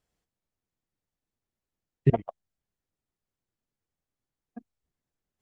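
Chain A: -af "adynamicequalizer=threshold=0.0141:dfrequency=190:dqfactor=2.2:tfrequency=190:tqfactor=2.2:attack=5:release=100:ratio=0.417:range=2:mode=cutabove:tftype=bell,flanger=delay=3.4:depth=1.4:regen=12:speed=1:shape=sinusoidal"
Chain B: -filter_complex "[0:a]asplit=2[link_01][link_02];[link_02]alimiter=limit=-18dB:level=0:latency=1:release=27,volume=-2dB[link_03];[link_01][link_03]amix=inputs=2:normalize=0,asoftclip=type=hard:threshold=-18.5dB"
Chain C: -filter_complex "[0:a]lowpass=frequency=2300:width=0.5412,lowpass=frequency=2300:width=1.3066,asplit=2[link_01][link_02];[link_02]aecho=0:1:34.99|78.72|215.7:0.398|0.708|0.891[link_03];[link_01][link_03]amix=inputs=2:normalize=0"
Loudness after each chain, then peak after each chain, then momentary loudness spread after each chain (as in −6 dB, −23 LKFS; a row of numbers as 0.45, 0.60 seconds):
−35.0, −30.5, −25.0 LKFS; −17.5, −18.5, −8.5 dBFS; 18, 17, 5 LU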